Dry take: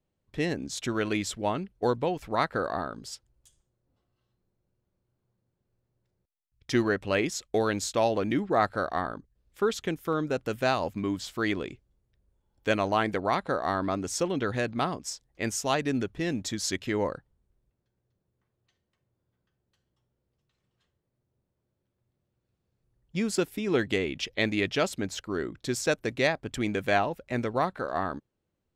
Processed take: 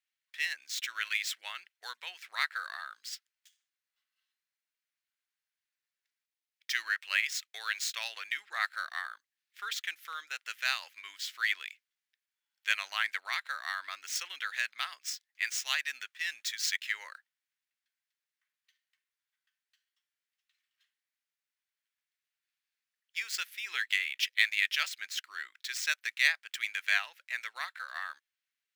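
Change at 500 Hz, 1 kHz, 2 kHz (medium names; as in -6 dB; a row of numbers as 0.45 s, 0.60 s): -32.0 dB, -12.0 dB, +2.5 dB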